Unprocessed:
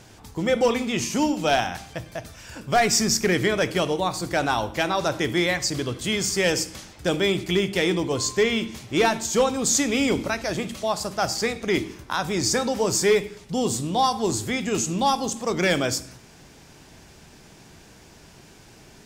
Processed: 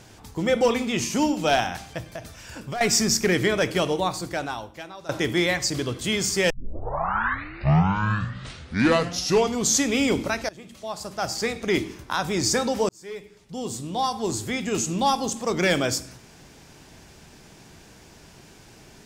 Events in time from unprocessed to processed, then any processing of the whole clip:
0:02.14–0:02.81: downward compressor 4 to 1, threshold −29 dBFS
0:04.06–0:05.09: fade out quadratic, to −18 dB
0:06.50: tape start 3.36 s
0:10.49–0:11.65: fade in, from −22 dB
0:12.89–0:15.56: fade in equal-power

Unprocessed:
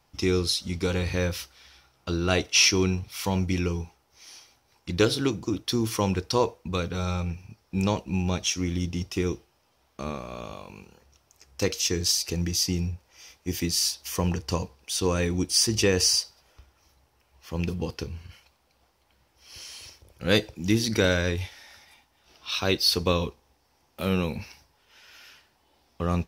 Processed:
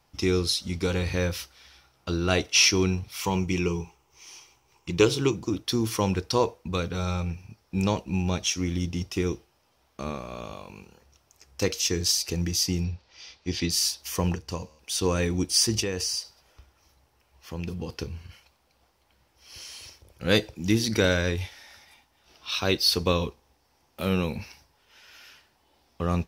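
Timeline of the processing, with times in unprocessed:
0:03.21–0:05.36: EQ curve with evenly spaced ripples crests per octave 0.72, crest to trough 8 dB
0:12.84–0:13.70: low-pass with resonance 4,300 Hz, resonance Q 2.5
0:14.35–0:14.79: tuned comb filter 77 Hz, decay 1.9 s, mix 50%
0:15.80–0:17.93: downward compressor 2 to 1, threshold −31 dBFS

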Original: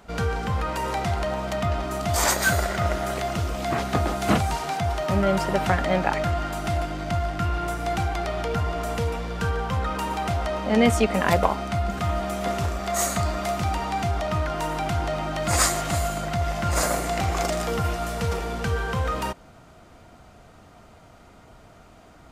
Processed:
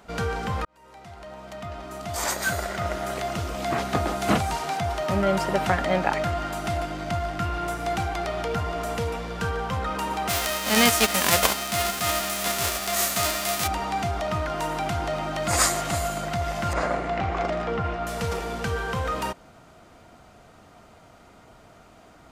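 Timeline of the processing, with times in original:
0:00.65–0:03.62: fade in
0:10.28–0:13.66: spectral envelope flattened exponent 0.3
0:16.73–0:18.07: low-pass filter 2,500 Hz
whole clip: low-shelf EQ 120 Hz −6.5 dB

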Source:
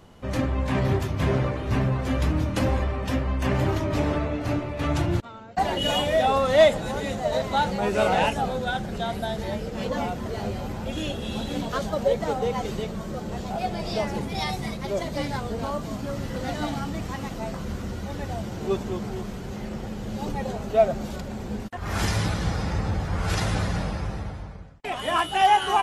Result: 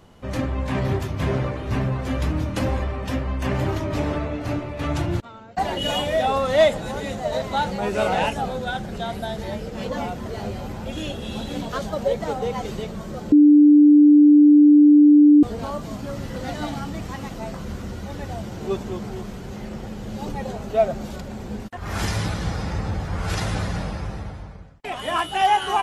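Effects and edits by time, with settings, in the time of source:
0:13.32–0:15.43: beep over 295 Hz −8 dBFS

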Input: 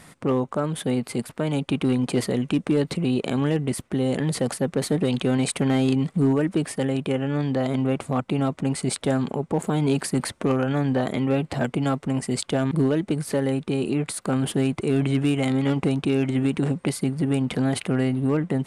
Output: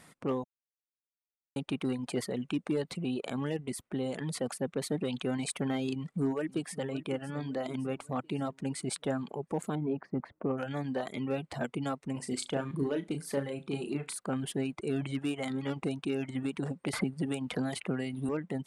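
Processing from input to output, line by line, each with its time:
0:00.44–0:01.56: silence
0:05.93–0:06.83: delay throw 560 ms, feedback 60%, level −13 dB
0:09.75–0:10.58: low-pass filter 1,100 Hz
0:12.12–0:14.17: flutter between parallel walls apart 6.1 metres, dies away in 0.3 s
0:16.93–0:18.29: multiband upward and downward compressor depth 100%
whole clip: reverb reduction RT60 1.1 s; low-shelf EQ 100 Hz −8.5 dB; level −8 dB

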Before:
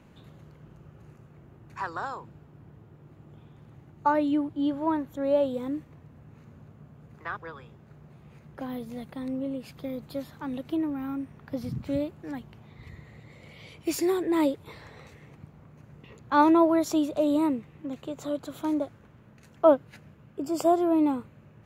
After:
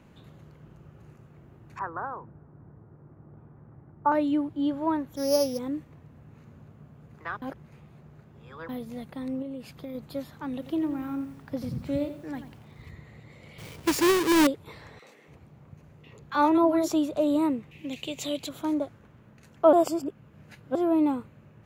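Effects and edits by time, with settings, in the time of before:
0:01.79–0:04.12: low-pass filter 1,600 Hz 24 dB per octave
0:05.16–0:05.59: samples sorted by size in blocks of 8 samples
0:07.42–0:08.69: reverse
0:09.42–0:09.95: downward compressor, threshold −33 dBFS
0:10.53–0:12.91: feedback echo at a low word length 88 ms, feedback 35%, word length 9 bits, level −10.5 dB
0:13.58–0:14.47: each half-wave held at its own peak
0:14.99–0:16.88: three-band delay without the direct sound highs, mids, lows 30/290 ms, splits 230/1,300 Hz
0:17.71–0:18.49: high shelf with overshoot 1,900 Hz +10 dB, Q 3
0:19.73–0:20.75: reverse

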